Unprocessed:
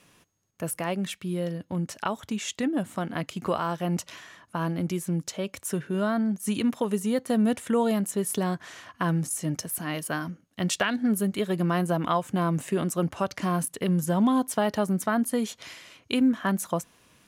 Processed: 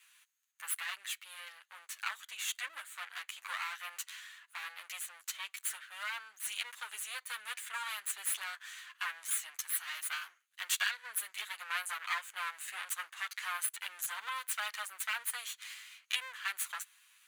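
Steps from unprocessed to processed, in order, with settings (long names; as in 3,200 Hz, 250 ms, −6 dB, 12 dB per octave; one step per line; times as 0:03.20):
lower of the sound and its delayed copy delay 9.7 ms
high-pass filter 1,400 Hz 24 dB per octave
parametric band 5,300 Hz −10.5 dB 0.27 octaves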